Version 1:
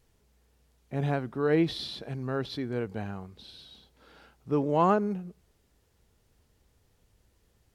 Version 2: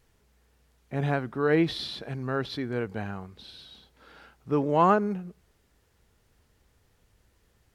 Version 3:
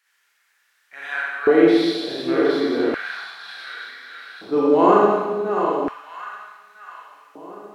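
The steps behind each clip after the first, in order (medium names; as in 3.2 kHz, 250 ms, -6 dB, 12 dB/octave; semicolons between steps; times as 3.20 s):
peaking EQ 1.6 kHz +4.5 dB 1.5 oct; trim +1 dB
backward echo that repeats 652 ms, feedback 50%, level -7 dB; Schroeder reverb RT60 1.3 s, combs from 32 ms, DRR -6 dB; LFO high-pass square 0.34 Hz 330–1600 Hz; trim -1.5 dB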